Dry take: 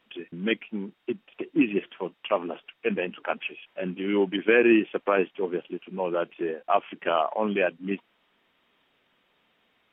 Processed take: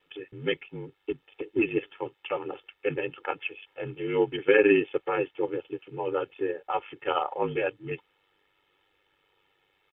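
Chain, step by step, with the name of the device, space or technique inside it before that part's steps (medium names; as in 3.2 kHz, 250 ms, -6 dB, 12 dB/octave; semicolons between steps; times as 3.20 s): ring-modulated robot voice (ring modulator 49 Hz; comb 2.3 ms, depth 91%); trim -1.5 dB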